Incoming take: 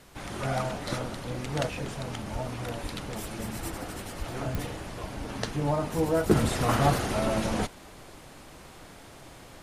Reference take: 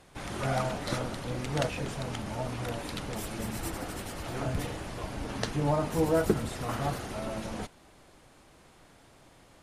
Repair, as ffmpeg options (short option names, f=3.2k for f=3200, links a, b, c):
-filter_complex "[0:a]adeclick=t=4,asplit=3[a][b][c];[a]afade=t=out:st=2.32:d=0.02[d];[b]highpass=f=140:w=0.5412,highpass=f=140:w=1.3066,afade=t=in:st=2.32:d=0.02,afade=t=out:st=2.44:d=0.02[e];[c]afade=t=in:st=2.44:d=0.02[f];[d][e][f]amix=inputs=3:normalize=0,asplit=3[g][h][i];[g]afade=t=out:st=2.82:d=0.02[j];[h]highpass=f=140:w=0.5412,highpass=f=140:w=1.3066,afade=t=in:st=2.82:d=0.02,afade=t=out:st=2.94:d=0.02[k];[i]afade=t=in:st=2.94:d=0.02[l];[j][k][l]amix=inputs=3:normalize=0,asplit=3[m][n][o];[m]afade=t=out:st=4.18:d=0.02[p];[n]highpass=f=140:w=0.5412,highpass=f=140:w=1.3066,afade=t=in:st=4.18:d=0.02,afade=t=out:st=4.3:d=0.02[q];[o]afade=t=in:st=4.3:d=0.02[r];[p][q][r]amix=inputs=3:normalize=0,agate=range=-21dB:threshold=-40dB,asetnsamples=n=441:p=0,asendcmd='6.31 volume volume -8.5dB',volume=0dB"